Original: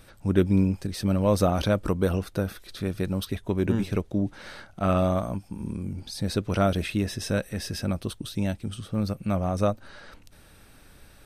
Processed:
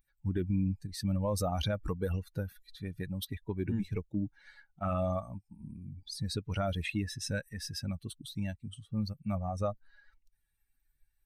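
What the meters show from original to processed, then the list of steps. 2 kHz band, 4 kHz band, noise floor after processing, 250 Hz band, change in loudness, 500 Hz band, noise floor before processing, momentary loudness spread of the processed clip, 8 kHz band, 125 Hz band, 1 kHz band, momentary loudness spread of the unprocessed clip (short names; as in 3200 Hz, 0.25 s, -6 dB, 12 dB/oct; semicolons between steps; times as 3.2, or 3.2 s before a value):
-7.0 dB, -5.0 dB, -77 dBFS, -10.0 dB, -8.5 dB, -10.5 dB, -53 dBFS, 11 LU, -5.5 dB, -7.5 dB, -8.5 dB, 11 LU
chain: per-bin expansion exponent 2; dynamic EQ 310 Hz, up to -3 dB, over -38 dBFS, Q 0.84; limiter -23 dBFS, peak gain reduction 10.5 dB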